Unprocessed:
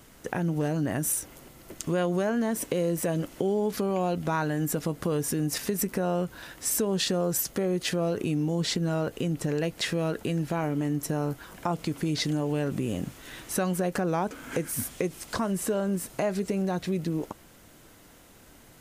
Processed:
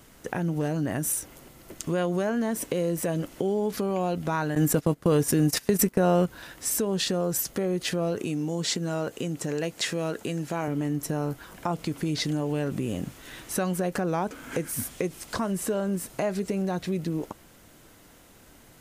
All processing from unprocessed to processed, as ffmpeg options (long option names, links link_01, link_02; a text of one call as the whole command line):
ffmpeg -i in.wav -filter_complex "[0:a]asettb=1/sr,asplit=3[link_01][link_02][link_03];[link_01]atrim=end=4.554[link_04];[link_02]atrim=start=4.55:end=6.26,asetpts=PTS-STARTPTS,afade=type=in:duration=0.004:curve=qsin,afade=type=out:start_time=1.706:duration=0.004:curve=qsin,agate=range=-19dB:threshold=-32dB:ratio=16:release=100:detection=peak,acontrast=53[link_05];[link_03]atrim=start=6.256[link_06];[link_04][link_05]acrossfade=duration=0.004:curve1=hsin:curve2=qsin[link_07];[link_07][link_06]acrossfade=duration=0.004:curve1=qsin:curve2=hsin,asettb=1/sr,asplit=3[link_08][link_09][link_10];[link_08]atrim=end=8.174[link_11];[link_09]atrim=start=8.17:end=10.68,asetpts=PTS-STARTPTS,afade=type=in:duration=0.004:curve=qsin,afade=type=out:start_time=2.506:duration=0.004:curve=qsin,highpass=frequency=180:poles=1,equalizer=frequency=7100:width_type=o:width=0.66:gain=5.5[link_12];[link_10]atrim=start=10.676[link_13];[link_11][link_12]acrossfade=duration=0.004:curve1=hsin:curve2=qsin[link_14];[link_14][link_13]acrossfade=duration=0.004:curve1=qsin:curve2=hsin" out.wav